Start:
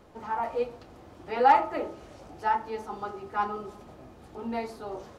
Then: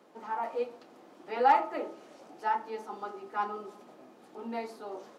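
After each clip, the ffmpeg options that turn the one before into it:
-af "highpass=f=210:w=0.5412,highpass=f=210:w=1.3066,volume=0.668"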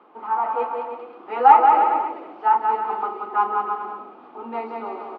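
-filter_complex "[0:a]highpass=280,equalizer=f=580:t=q:w=4:g=-7,equalizer=f=850:t=q:w=4:g=5,equalizer=f=1200:t=q:w=4:g=8,equalizer=f=1800:t=q:w=4:g=-7,lowpass=f=2800:w=0.5412,lowpass=f=2800:w=1.3066,asplit=2[s0][s1];[s1]aecho=0:1:180|315|416.2|492.2|549.1:0.631|0.398|0.251|0.158|0.1[s2];[s0][s2]amix=inputs=2:normalize=0,volume=2.24"

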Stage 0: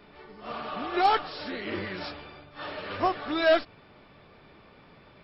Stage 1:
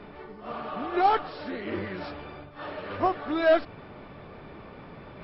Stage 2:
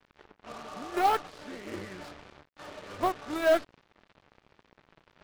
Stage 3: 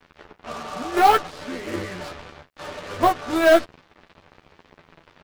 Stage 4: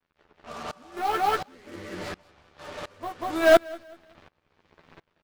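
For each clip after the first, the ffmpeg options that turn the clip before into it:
-af "lowpass=f=1400:p=1,areverse,acompressor=mode=upward:threshold=0.0141:ratio=2.5,areverse,volume=1.26"
-af "acrusher=bits=5:mix=0:aa=0.5,aeval=exprs='0.266*(cos(1*acos(clip(val(0)/0.266,-1,1)))-cos(1*PI/2))+0.0188*(cos(7*acos(clip(val(0)/0.266,-1,1)))-cos(7*PI/2))':c=same,volume=0.708"
-filter_complex "[0:a]asplit=2[s0][s1];[s1]adelay=12,volume=0.631[s2];[s0][s2]amix=inputs=2:normalize=0,volume=2.66"
-filter_complex "[0:a]asplit=2[s0][s1];[s1]aecho=0:1:189|378|567:0.631|0.0946|0.0142[s2];[s0][s2]amix=inputs=2:normalize=0,aeval=exprs='val(0)*pow(10,-25*if(lt(mod(-1.4*n/s,1),2*abs(-1.4)/1000),1-mod(-1.4*n/s,1)/(2*abs(-1.4)/1000),(mod(-1.4*n/s,1)-2*abs(-1.4)/1000)/(1-2*abs(-1.4)/1000))/20)':c=same"

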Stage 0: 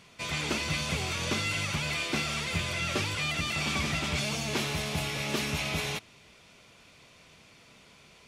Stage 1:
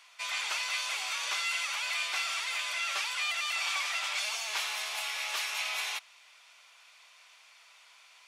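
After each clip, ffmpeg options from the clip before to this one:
-af "highpass=f=830:w=0.5412,highpass=f=830:w=1.3066"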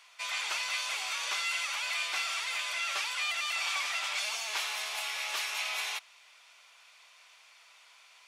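-af "acontrast=25,lowshelf=f=190:g=11,volume=0.531"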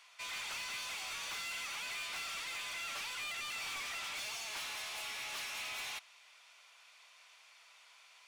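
-af "asoftclip=type=tanh:threshold=0.0168,volume=0.708"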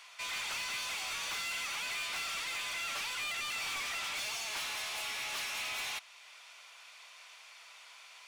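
-af "alimiter=level_in=7.5:limit=0.0631:level=0:latency=1:release=353,volume=0.133,volume=2.24"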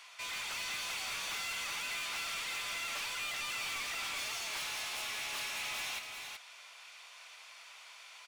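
-af "asoftclip=type=tanh:threshold=0.0168,aecho=1:1:379:0.531"

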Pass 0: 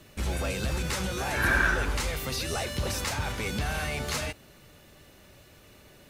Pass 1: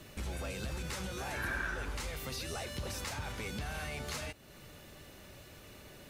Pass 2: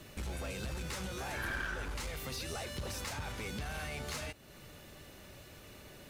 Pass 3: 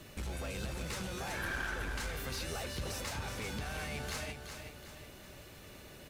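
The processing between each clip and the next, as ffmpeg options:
-af "acompressor=threshold=0.00501:ratio=2,volume=1.12"
-af "aeval=exprs='clip(val(0),-1,0.015)':c=same"
-af "aecho=1:1:371|742|1113|1484|1855:0.422|0.169|0.0675|0.027|0.0108"

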